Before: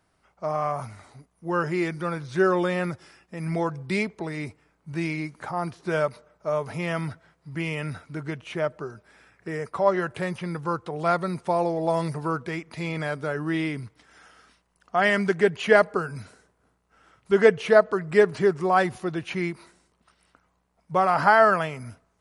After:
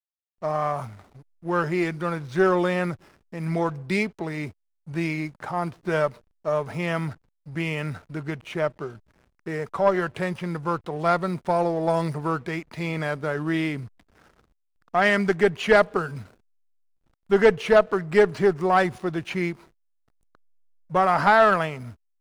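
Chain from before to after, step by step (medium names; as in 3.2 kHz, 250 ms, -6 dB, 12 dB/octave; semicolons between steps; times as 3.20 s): valve stage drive 10 dB, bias 0.35; hysteresis with a dead band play -45 dBFS; trim +2.5 dB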